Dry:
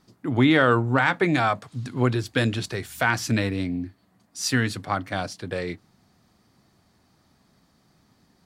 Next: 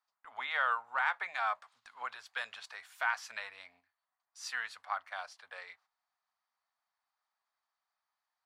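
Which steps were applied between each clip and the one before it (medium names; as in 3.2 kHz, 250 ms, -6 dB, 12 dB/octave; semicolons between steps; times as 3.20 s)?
inverse Chebyshev high-pass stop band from 350 Hz, stop band 50 dB; gate -55 dBFS, range -10 dB; tilt EQ -4 dB/octave; trim -6.5 dB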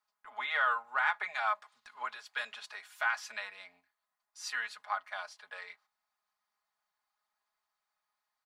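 comb 4.8 ms, depth 70%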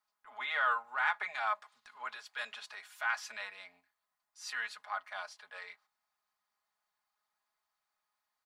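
transient shaper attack -6 dB, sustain 0 dB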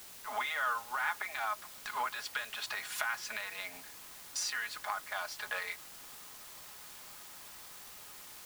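recorder AGC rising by 56 dB/s; word length cut 8-bit, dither triangular; trim -3 dB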